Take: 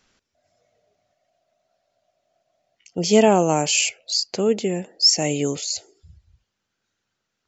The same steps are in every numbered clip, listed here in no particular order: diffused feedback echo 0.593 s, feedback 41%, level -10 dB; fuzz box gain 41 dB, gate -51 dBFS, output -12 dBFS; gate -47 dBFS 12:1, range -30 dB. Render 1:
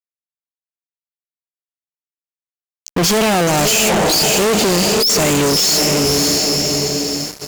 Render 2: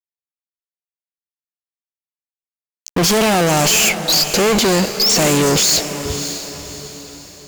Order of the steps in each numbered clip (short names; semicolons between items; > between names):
diffused feedback echo > gate > fuzz box; gate > fuzz box > diffused feedback echo